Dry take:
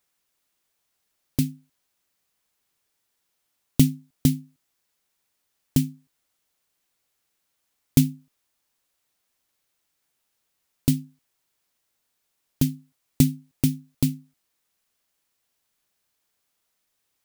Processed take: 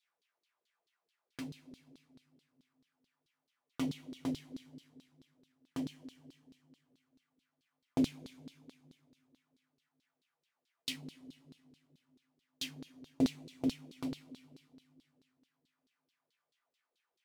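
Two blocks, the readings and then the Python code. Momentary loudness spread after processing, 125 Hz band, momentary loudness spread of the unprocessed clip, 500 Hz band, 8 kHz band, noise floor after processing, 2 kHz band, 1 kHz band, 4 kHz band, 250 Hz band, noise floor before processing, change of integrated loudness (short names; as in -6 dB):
21 LU, -23.5 dB, 9 LU, -5.0 dB, -18.5 dB, under -85 dBFS, -6.5 dB, n/a, -7.0 dB, -12.0 dB, -76 dBFS, -14.5 dB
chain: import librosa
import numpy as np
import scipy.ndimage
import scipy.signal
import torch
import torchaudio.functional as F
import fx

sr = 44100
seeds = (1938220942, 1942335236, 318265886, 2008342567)

y = fx.rev_double_slope(x, sr, seeds[0], early_s=0.3, late_s=2.7, knee_db=-18, drr_db=1.0)
y = fx.filter_lfo_bandpass(y, sr, shape='saw_down', hz=4.6, low_hz=350.0, high_hz=4200.0, q=3.2)
y = y * librosa.db_to_amplitude(2.0)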